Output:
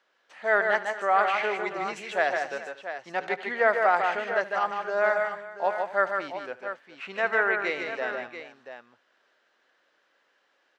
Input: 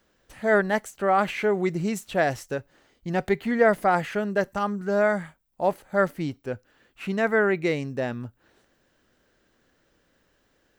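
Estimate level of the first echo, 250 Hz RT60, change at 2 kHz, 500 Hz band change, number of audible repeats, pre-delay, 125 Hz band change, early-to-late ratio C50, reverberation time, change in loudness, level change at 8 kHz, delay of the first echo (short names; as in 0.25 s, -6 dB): -18.0 dB, none, +2.5 dB, -3.5 dB, 5, none, under -20 dB, none, none, -1.5 dB, n/a, 74 ms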